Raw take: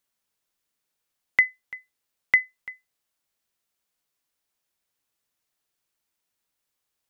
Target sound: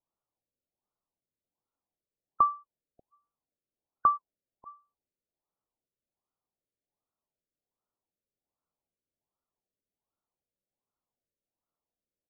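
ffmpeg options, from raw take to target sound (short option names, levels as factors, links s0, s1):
-af "asetrate=25442,aresample=44100,afftfilt=real='re*lt(b*sr/1024,610*pow(1500/610,0.5+0.5*sin(2*PI*1.3*pts/sr)))':imag='im*lt(b*sr/1024,610*pow(1500/610,0.5+0.5*sin(2*PI*1.3*pts/sr)))':win_size=1024:overlap=0.75,volume=0.531"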